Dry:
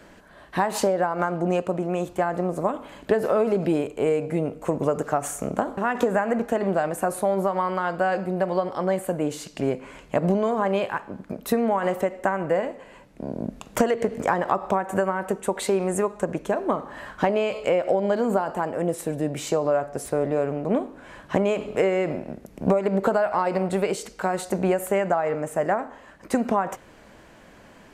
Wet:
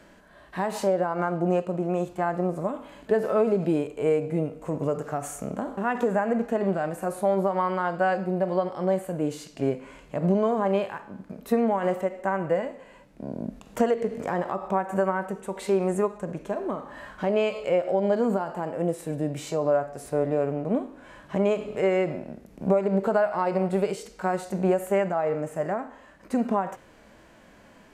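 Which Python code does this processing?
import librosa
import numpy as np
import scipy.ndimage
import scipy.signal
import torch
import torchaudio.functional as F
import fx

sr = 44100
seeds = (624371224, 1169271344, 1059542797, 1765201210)

y = fx.hpss(x, sr, part='percussive', gain_db=-11)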